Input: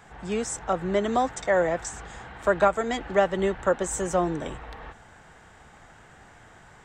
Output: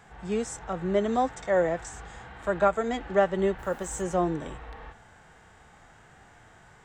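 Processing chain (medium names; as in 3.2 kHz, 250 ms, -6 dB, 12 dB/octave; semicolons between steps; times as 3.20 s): 3.58–4.01 s: added noise white -58 dBFS; harmonic-percussive split percussive -9 dB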